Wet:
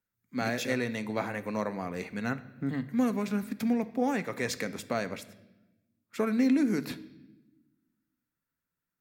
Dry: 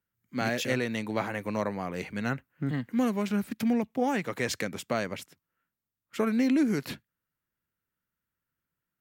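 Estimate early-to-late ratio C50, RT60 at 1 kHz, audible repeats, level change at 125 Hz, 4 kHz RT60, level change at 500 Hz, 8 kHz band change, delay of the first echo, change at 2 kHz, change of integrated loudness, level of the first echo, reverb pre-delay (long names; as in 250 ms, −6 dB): 16.0 dB, 0.85 s, no echo audible, −3.0 dB, 0.90 s, −1.5 dB, −2.0 dB, no echo audible, −2.0 dB, −1.0 dB, no echo audible, 4 ms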